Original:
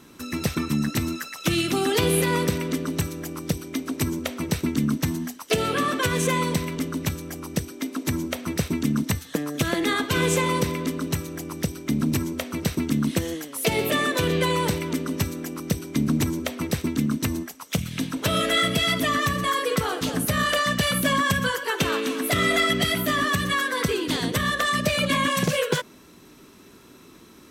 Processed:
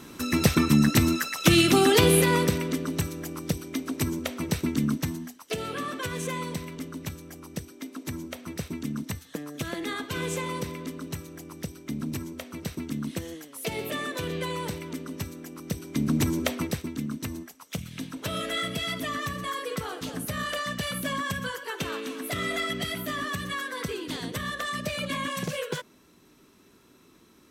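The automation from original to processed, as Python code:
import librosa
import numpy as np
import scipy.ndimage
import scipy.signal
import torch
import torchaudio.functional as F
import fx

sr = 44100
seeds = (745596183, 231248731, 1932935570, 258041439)

y = fx.gain(x, sr, db=fx.line((1.73, 4.5), (2.77, -2.5), (4.9, -2.5), (5.33, -9.0), (15.51, -9.0), (16.51, 2.0), (16.86, -8.5)))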